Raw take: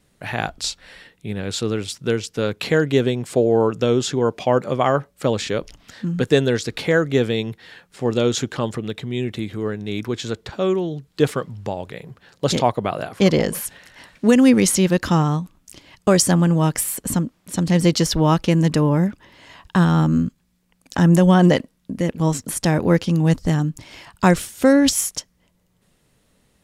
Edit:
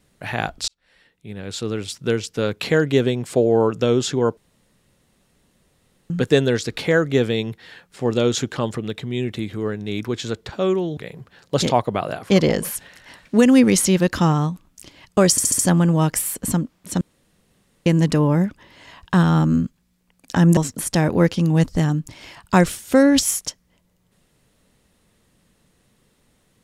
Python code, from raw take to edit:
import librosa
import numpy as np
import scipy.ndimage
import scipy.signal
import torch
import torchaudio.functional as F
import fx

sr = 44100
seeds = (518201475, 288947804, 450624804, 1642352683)

y = fx.edit(x, sr, fx.fade_in_span(start_s=0.68, length_s=1.4),
    fx.room_tone_fill(start_s=4.37, length_s=1.73),
    fx.cut(start_s=10.97, length_s=0.9),
    fx.stutter(start_s=16.21, slice_s=0.07, count=5),
    fx.room_tone_fill(start_s=17.63, length_s=0.85),
    fx.cut(start_s=21.19, length_s=1.08), tone=tone)